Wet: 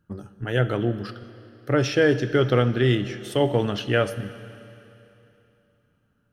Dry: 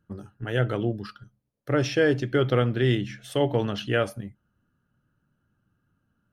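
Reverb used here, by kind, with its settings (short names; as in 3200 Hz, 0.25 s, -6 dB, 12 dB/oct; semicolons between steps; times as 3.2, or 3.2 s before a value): Schroeder reverb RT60 3 s, combs from 26 ms, DRR 13 dB; gain +2.5 dB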